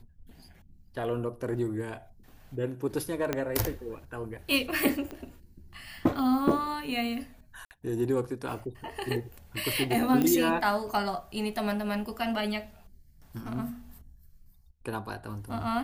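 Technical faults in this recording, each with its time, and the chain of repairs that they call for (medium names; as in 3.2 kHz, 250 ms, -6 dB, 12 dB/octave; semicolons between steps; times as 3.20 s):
3.33 s: pop -13 dBFS
5.11 s: pop -24 dBFS
7.65–7.71 s: dropout 59 ms
10.22 s: pop -14 dBFS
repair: de-click; interpolate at 7.65 s, 59 ms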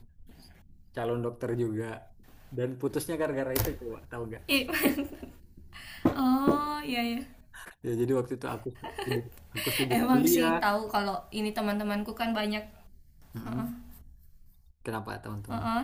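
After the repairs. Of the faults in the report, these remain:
3.33 s: pop
5.11 s: pop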